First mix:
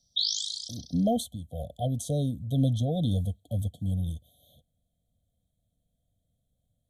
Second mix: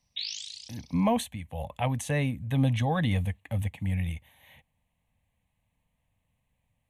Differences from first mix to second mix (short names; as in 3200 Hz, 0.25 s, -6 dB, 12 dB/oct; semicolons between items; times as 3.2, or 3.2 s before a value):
background -7.5 dB; master: remove brick-wall FIR band-stop 750–3100 Hz